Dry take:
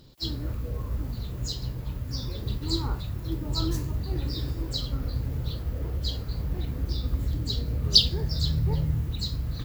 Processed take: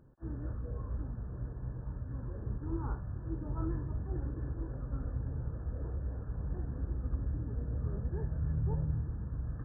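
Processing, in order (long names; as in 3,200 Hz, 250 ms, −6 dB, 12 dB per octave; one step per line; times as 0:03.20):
linear-phase brick-wall low-pass 1,800 Hz
level −7 dB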